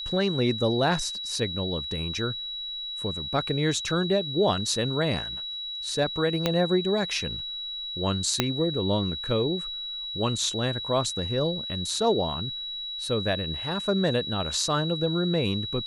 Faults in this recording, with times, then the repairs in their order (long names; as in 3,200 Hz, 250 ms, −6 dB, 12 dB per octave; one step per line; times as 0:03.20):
whistle 3,900 Hz −32 dBFS
0:06.46: click −9 dBFS
0:08.40: click −5 dBFS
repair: click removal
notch filter 3,900 Hz, Q 30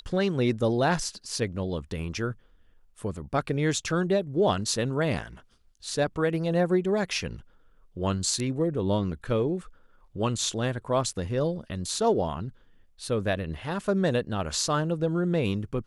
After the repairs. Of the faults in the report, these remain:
0:06.46: click
0:08.40: click